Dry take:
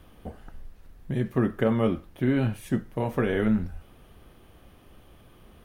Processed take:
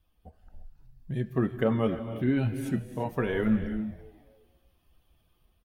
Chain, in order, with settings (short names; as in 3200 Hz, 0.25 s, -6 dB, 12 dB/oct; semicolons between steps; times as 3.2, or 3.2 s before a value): per-bin expansion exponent 1.5; AGC gain up to 5 dB; frequency-shifting echo 0.268 s, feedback 34%, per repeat +110 Hz, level -20.5 dB; non-linear reverb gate 0.37 s rising, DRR 10 dB; ending taper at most 460 dB/s; gain -5.5 dB